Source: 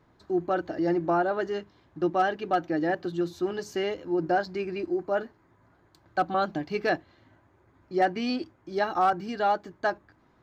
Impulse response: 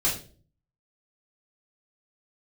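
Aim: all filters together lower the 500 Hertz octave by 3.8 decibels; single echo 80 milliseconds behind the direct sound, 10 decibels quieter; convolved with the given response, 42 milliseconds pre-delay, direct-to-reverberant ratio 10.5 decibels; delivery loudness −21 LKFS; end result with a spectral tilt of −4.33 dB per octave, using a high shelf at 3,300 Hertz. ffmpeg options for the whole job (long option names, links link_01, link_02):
-filter_complex "[0:a]equalizer=frequency=500:width_type=o:gain=-5.5,highshelf=frequency=3300:gain=-3.5,aecho=1:1:80:0.316,asplit=2[link_01][link_02];[1:a]atrim=start_sample=2205,adelay=42[link_03];[link_02][link_03]afir=irnorm=-1:irlink=0,volume=-20.5dB[link_04];[link_01][link_04]amix=inputs=2:normalize=0,volume=9dB"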